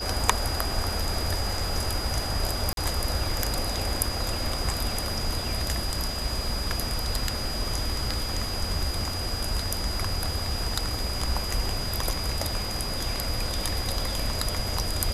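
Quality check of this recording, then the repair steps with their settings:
whistle 4,900 Hz −33 dBFS
0:02.73–0:02.77: drop-out 42 ms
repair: notch filter 4,900 Hz, Q 30
repair the gap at 0:02.73, 42 ms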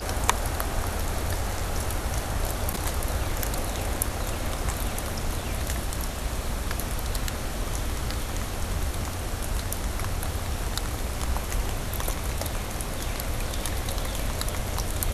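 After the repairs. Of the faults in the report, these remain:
none of them is left

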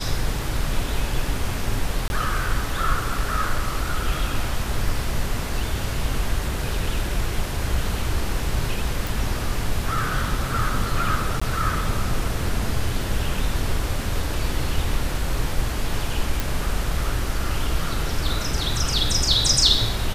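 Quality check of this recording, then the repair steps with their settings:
0:02.08–0:02.10: drop-out 21 ms
0:09.07: click
0:11.40–0:11.41: drop-out 15 ms
0:16.40: click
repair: click removal
repair the gap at 0:02.08, 21 ms
repair the gap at 0:11.40, 15 ms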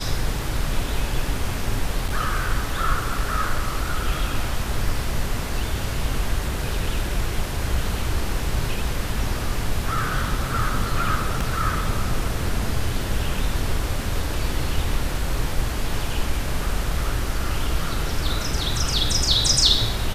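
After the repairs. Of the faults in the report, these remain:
none of them is left

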